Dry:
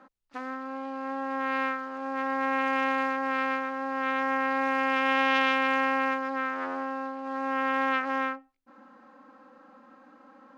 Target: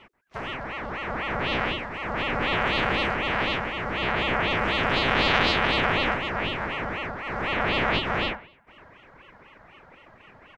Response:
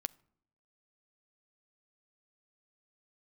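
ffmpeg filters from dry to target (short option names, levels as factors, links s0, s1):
-filter_complex "[0:a]asplit=2[s0][s1];[s1]adelay=134,lowpass=f=3800:p=1,volume=0.112,asplit=2[s2][s3];[s3]adelay=134,lowpass=f=3800:p=1,volume=0.33,asplit=2[s4][s5];[s5]adelay=134,lowpass=f=3800:p=1,volume=0.33[s6];[s0][s2][s4][s6]amix=inputs=4:normalize=0,aeval=exprs='val(0)*sin(2*PI*990*n/s+990*0.7/4*sin(2*PI*4*n/s))':c=same,volume=1.88"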